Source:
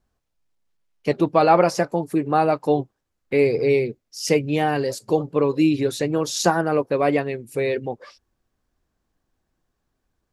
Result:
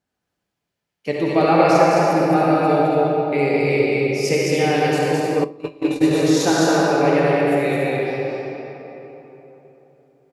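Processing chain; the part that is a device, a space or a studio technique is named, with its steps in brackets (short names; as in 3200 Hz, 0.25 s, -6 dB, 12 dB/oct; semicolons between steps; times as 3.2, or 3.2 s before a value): stadium PA (HPF 120 Hz; bell 2600 Hz +3 dB 1.3 oct; loudspeakers at several distances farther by 73 m -3 dB, 97 m -10 dB; reverb RT60 3.6 s, pre-delay 46 ms, DRR -4 dB); notches 60/120/180/240/300/360/420 Hz; 5.44–6.11 gate -10 dBFS, range -27 dB; notch 1100 Hz, Q 8.9; shoebox room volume 220 m³, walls furnished, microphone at 0.4 m; gain -3.5 dB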